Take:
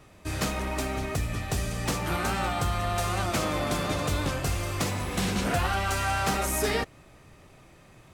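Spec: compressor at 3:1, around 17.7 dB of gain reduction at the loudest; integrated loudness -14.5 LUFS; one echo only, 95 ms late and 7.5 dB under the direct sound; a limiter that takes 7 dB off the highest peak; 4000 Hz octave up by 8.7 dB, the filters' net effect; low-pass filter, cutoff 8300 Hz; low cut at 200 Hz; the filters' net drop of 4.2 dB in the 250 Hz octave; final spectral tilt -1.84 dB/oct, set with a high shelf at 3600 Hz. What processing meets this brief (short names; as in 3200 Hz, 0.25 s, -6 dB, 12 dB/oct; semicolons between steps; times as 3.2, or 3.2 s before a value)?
HPF 200 Hz; LPF 8300 Hz; bell 250 Hz -3 dB; high shelf 3600 Hz +5.5 dB; bell 4000 Hz +7.5 dB; compressor 3:1, threshold -47 dBFS; limiter -35 dBFS; echo 95 ms -7.5 dB; gain +29 dB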